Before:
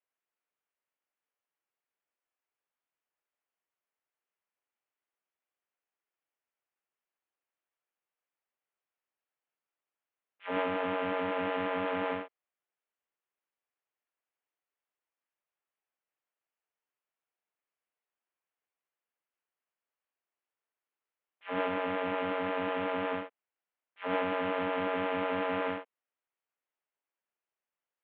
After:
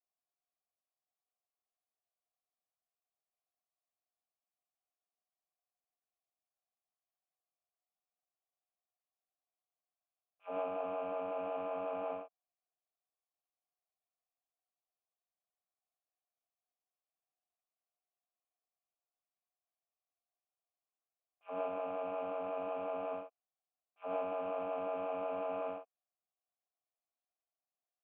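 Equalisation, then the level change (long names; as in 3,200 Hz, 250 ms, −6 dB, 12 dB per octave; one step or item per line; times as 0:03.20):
formant filter a
spectral tilt −4.5 dB per octave
high-shelf EQ 3,600 Hz +8 dB
+1.5 dB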